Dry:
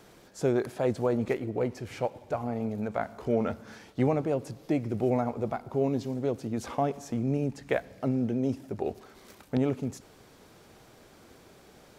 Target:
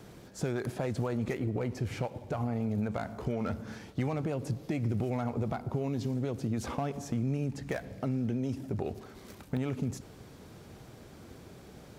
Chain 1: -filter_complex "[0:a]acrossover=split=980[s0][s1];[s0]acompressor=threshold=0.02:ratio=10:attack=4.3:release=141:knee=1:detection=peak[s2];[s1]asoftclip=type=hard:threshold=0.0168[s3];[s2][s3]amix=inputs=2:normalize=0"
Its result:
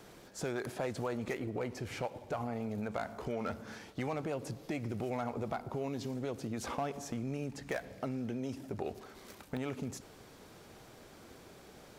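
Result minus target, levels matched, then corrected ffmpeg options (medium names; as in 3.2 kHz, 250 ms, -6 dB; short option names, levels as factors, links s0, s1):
125 Hz band -4.5 dB
-filter_complex "[0:a]acrossover=split=980[s0][s1];[s0]acompressor=threshold=0.02:ratio=10:attack=4.3:release=141:knee=1:detection=peak,equalizer=f=100:t=o:w=3:g=10[s2];[s1]asoftclip=type=hard:threshold=0.0168[s3];[s2][s3]amix=inputs=2:normalize=0"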